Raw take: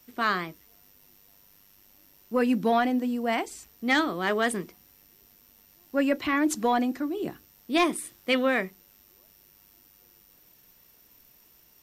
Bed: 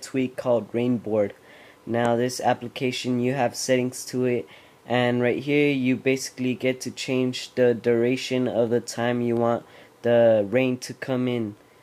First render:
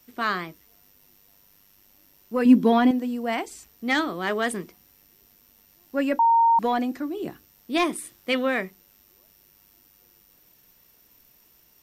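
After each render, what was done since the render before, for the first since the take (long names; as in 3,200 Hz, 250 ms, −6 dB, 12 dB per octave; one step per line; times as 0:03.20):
0:02.45–0:02.91: hollow resonant body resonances 260/390/1,000/3,300 Hz, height 11 dB
0:06.19–0:06.59: beep over 922 Hz −14.5 dBFS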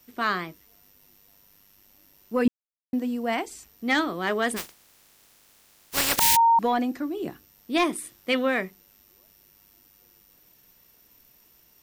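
0:02.48–0:02.93: silence
0:04.56–0:06.35: compressing power law on the bin magnitudes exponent 0.18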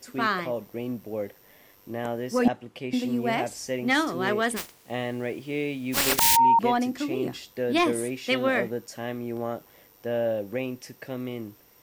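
mix in bed −9 dB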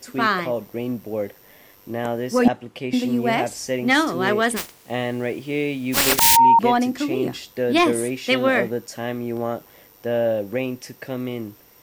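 level +5.5 dB
brickwall limiter −2 dBFS, peak gain reduction 2 dB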